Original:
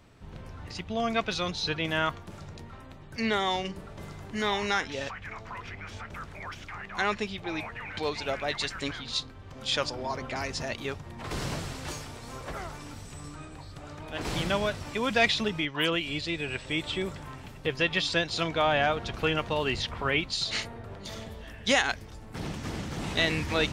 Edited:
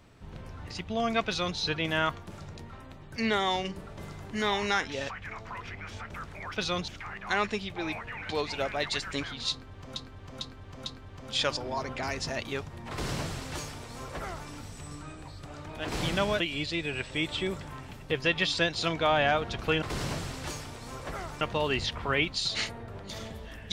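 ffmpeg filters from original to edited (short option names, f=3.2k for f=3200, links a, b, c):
-filter_complex "[0:a]asplit=9[a][b][c][d][e][f][g][h][i];[a]atrim=end=6.562[j];[b]atrim=start=1.258:end=1.582[k];[c]atrim=start=6.558:end=9.642[l];[d]atrim=start=9.188:end=9.642[m];[e]atrim=start=9.188:end=9.642[n];[f]atrim=start=9.188:end=14.732[o];[g]atrim=start=15.948:end=19.372[p];[h]atrim=start=11.228:end=12.822[q];[i]atrim=start=19.368[r];[j][k]acrossfade=d=0.004:c1=hsin:c2=hsin[s];[s][l]acrossfade=d=0.004:c1=hsin:c2=hsin[t];[t][m]acrossfade=d=0.004:c1=hsin:c2=hsin[u];[u][n]acrossfade=d=0.004:c1=hsin:c2=hsin[v];[v][o]acrossfade=d=0.004:c1=hsin:c2=hsin[w];[w][p]acrossfade=d=0.004:c1=hsin:c2=hsin[x];[x][q]acrossfade=d=0.004:c1=hsin:c2=hsin[y];[y][r]acrossfade=d=0.004:c1=hsin:c2=hsin"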